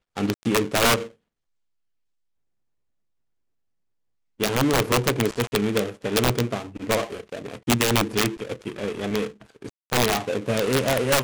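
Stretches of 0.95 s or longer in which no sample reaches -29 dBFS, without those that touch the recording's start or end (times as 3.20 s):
1.06–4.40 s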